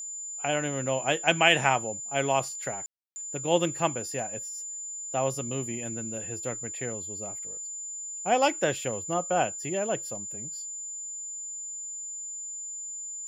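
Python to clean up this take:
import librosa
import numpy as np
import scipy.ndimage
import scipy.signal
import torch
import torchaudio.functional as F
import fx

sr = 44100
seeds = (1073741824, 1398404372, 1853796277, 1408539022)

y = fx.notch(x, sr, hz=7100.0, q=30.0)
y = fx.fix_ambience(y, sr, seeds[0], print_start_s=4.62, print_end_s=5.12, start_s=2.86, end_s=3.16)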